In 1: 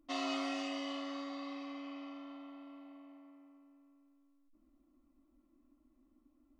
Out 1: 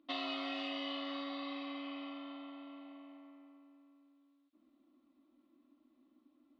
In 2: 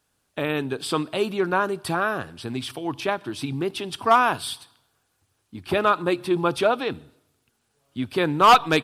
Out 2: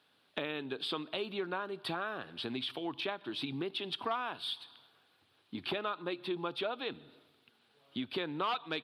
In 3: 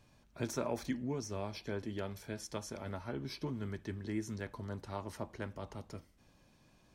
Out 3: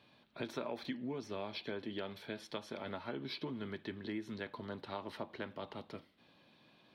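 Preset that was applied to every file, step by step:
high-pass filter 190 Hz 12 dB per octave
high shelf with overshoot 5,000 Hz −10.5 dB, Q 3
downward compressor 4 to 1, threshold −39 dBFS
level +2 dB

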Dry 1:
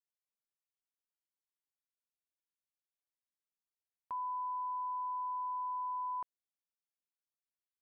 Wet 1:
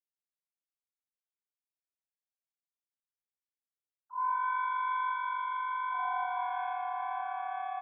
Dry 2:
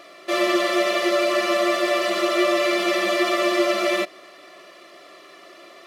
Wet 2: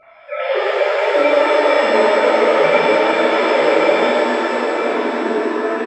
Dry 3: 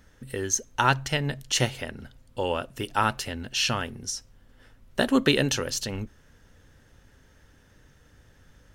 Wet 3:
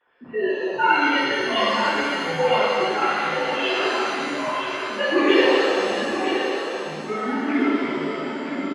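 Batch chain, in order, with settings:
three sine waves on the formant tracks
in parallel at −7 dB: gain into a clipping stage and back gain 13.5 dB
on the sum: delay with pitch and tempo change per echo 427 ms, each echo −5 semitones, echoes 3, each echo −6 dB
single-tap delay 969 ms −7.5 dB
reverb with rising layers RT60 2.2 s, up +7 semitones, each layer −8 dB, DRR −11 dB
level −9.5 dB

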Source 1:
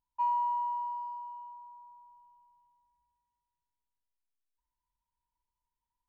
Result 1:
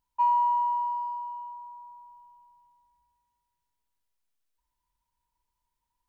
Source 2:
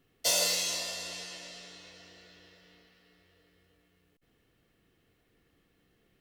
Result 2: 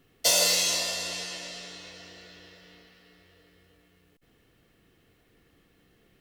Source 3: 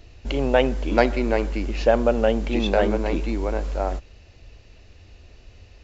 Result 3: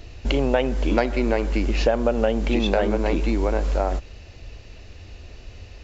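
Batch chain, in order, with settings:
downward compressor 4 to 1, threshold −24 dBFS
level +6.5 dB

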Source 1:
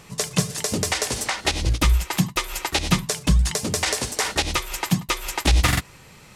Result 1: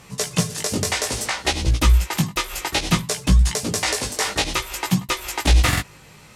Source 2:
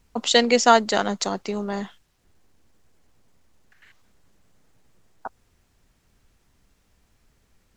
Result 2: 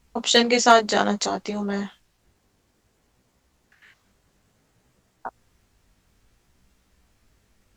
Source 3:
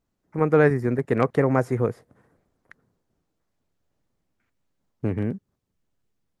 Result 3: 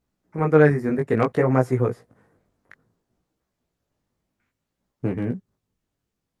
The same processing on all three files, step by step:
chorus effect 0.59 Hz, delay 15.5 ms, depth 4.9 ms
asymmetric clip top −10.5 dBFS
level +4 dB

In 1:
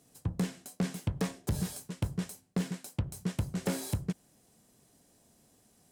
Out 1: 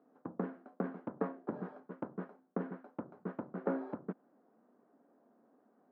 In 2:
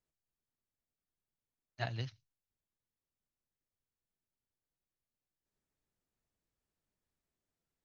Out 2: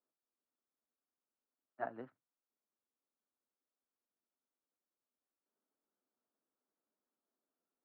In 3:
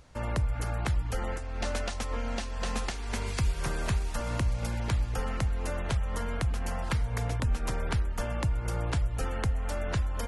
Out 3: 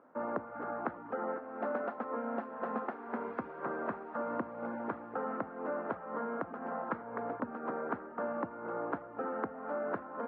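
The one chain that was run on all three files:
elliptic band-pass filter 240–1,400 Hz, stop band 80 dB
level +1.5 dB

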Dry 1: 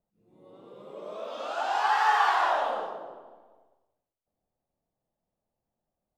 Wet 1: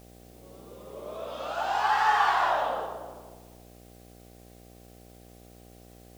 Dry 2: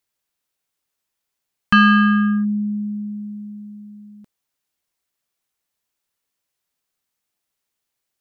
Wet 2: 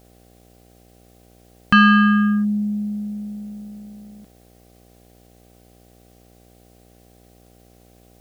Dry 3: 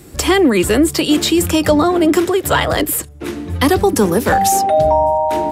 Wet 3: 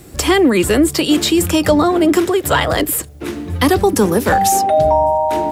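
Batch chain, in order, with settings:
bit-depth reduction 10 bits, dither triangular
hum with harmonics 60 Hz, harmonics 13, −52 dBFS −3 dB per octave

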